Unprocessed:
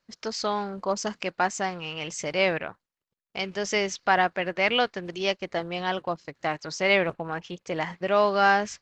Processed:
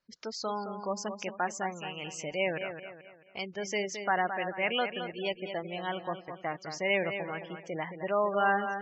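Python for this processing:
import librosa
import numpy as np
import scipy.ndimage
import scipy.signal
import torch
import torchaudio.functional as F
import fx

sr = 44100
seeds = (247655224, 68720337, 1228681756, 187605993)

y = fx.echo_feedback(x, sr, ms=217, feedback_pct=39, wet_db=-8.5)
y = fx.spec_gate(y, sr, threshold_db=-20, keep='strong')
y = y * librosa.db_to_amplitude(-6.5)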